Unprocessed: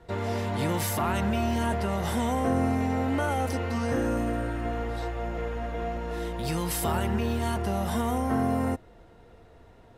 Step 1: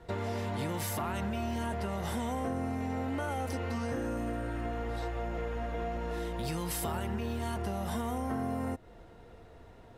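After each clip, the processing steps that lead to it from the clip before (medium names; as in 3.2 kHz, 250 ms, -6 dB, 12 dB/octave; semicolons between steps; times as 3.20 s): compression 4:1, threshold -32 dBFS, peak gain reduction 9.5 dB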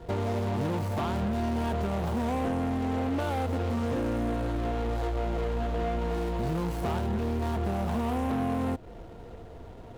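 median filter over 25 samples; saturation -33 dBFS, distortion -14 dB; trim +9 dB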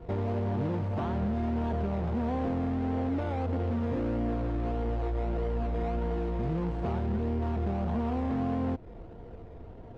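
in parallel at -7 dB: decimation with a swept rate 24×, swing 60% 1.6 Hz; on the sum: tape spacing loss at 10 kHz 28 dB; trim -3 dB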